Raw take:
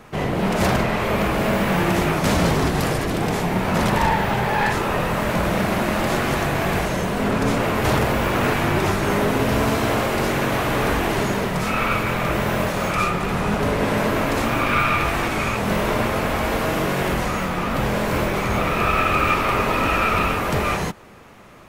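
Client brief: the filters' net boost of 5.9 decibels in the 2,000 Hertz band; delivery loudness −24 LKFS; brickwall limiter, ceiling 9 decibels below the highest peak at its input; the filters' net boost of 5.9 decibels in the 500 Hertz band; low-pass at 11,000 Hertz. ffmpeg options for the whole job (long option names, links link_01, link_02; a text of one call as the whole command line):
ffmpeg -i in.wav -af "lowpass=11000,equalizer=frequency=500:width_type=o:gain=7,equalizer=frequency=2000:width_type=o:gain=7,volume=-4dB,alimiter=limit=-15.5dB:level=0:latency=1" out.wav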